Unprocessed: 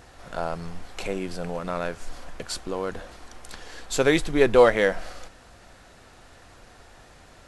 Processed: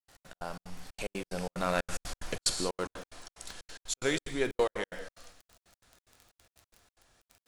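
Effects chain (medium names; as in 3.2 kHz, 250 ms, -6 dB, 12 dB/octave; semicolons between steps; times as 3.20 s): Doppler pass-by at 2.12 s, 15 m/s, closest 8 m; crackle 28 per s -46 dBFS; treble shelf 3.1 kHz +10 dB; gated-style reverb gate 220 ms flat, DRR 7.5 dB; trance gate ".x.x.xx.xxx" 183 bpm -60 dB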